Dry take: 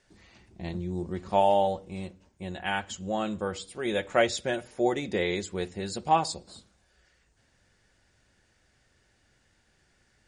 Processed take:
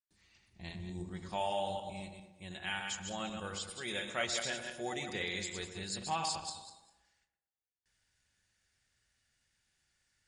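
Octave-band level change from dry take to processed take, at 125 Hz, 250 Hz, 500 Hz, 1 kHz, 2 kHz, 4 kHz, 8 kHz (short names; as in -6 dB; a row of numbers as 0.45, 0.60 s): -9.0, -11.5, -13.5, -11.0, -5.0, -2.0, -0.5 dB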